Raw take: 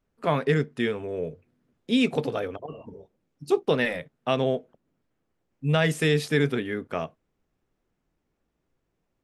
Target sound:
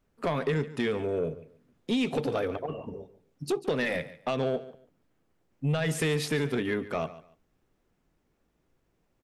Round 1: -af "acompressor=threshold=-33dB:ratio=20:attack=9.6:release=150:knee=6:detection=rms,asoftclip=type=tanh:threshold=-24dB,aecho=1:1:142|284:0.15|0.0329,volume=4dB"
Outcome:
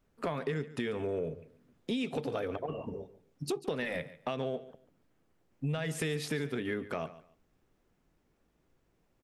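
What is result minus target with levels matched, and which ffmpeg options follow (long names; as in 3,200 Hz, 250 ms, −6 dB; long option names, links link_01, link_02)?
downward compressor: peak gain reduction +8 dB
-af "acompressor=threshold=-24.5dB:ratio=20:attack=9.6:release=150:knee=6:detection=rms,asoftclip=type=tanh:threshold=-24dB,aecho=1:1:142|284:0.15|0.0329,volume=4dB"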